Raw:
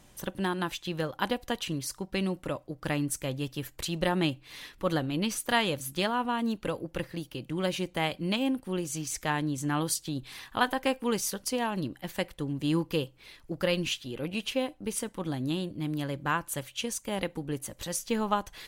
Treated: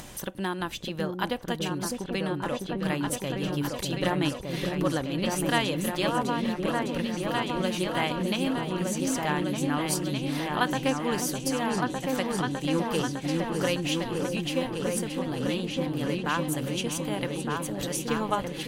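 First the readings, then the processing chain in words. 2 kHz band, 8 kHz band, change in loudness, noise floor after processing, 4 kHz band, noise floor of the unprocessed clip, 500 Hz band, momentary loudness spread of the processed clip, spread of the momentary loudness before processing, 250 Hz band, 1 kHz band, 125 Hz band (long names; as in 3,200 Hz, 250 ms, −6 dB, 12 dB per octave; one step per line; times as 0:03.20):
+2.0 dB, +1.5 dB, +2.5 dB, −38 dBFS, +2.0 dB, −58 dBFS, +3.0 dB, 4 LU, 8 LU, +3.5 dB, +2.5 dB, +3.0 dB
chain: upward compression, threshold −30 dBFS
low-shelf EQ 130 Hz −4 dB
on a send: echo whose low-pass opens from repeat to repeat 606 ms, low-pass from 400 Hz, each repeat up 2 octaves, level 0 dB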